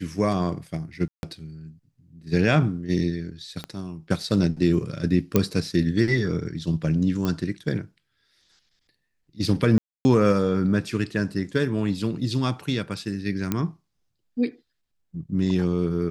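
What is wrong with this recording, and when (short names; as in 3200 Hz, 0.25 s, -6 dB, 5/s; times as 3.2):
1.08–1.23 gap 0.151 s
3.64 pop -18 dBFS
5.36 pop -5 dBFS
7.25 pop -14 dBFS
9.78–10.05 gap 0.27 s
13.52 pop -10 dBFS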